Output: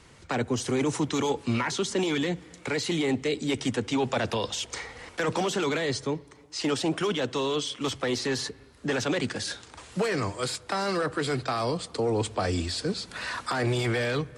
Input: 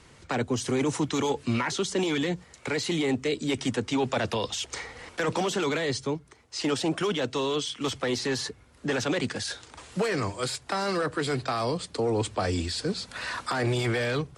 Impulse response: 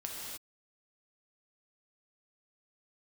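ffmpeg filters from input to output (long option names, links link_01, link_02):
-filter_complex "[0:a]asplit=2[link_01][link_02];[1:a]atrim=start_sample=2205,lowpass=2700,adelay=67[link_03];[link_02][link_03]afir=irnorm=-1:irlink=0,volume=-21.5dB[link_04];[link_01][link_04]amix=inputs=2:normalize=0"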